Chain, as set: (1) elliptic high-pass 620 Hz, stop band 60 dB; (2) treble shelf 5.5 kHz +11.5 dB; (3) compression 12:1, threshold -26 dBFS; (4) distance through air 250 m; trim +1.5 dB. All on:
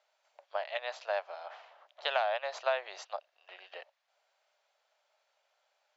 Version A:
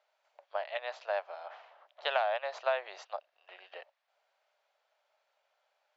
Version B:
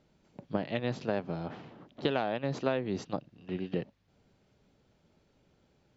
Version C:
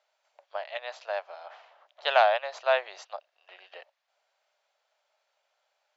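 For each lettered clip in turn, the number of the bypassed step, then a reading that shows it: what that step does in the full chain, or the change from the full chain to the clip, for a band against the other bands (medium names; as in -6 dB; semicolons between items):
2, 4 kHz band -2.0 dB; 1, 500 Hz band +5.0 dB; 3, mean gain reduction 1.5 dB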